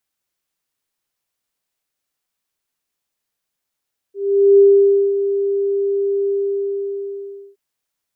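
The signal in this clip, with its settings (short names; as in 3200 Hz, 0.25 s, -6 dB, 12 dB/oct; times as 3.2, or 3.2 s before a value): ADSR sine 398 Hz, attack 0.442 s, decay 0.549 s, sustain -10 dB, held 2.15 s, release 1.27 s -5.5 dBFS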